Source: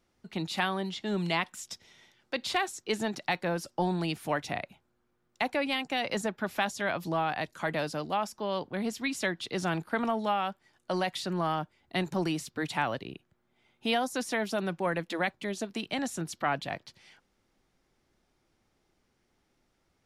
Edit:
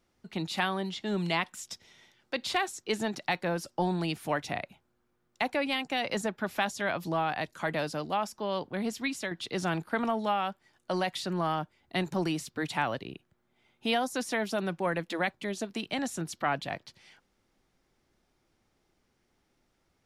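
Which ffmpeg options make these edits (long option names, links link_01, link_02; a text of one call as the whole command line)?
ffmpeg -i in.wav -filter_complex "[0:a]asplit=2[link_01][link_02];[link_01]atrim=end=9.31,asetpts=PTS-STARTPTS,afade=type=out:start_time=9.06:duration=0.25:silence=0.446684[link_03];[link_02]atrim=start=9.31,asetpts=PTS-STARTPTS,afade=type=in:duration=0.004:curve=hsin:silence=0.446684[link_04];[link_03][link_04]concat=n=2:v=0:a=1" out.wav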